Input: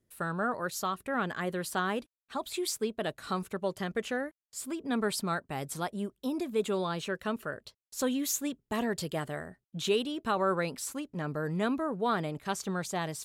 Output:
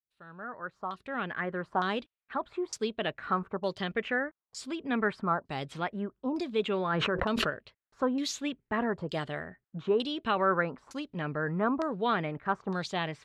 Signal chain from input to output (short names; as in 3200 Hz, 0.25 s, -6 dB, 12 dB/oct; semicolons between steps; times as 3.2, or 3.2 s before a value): opening faded in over 1.90 s; LFO low-pass saw down 1.1 Hz 870–5200 Hz; 6.9–7.5 fast leveller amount 100%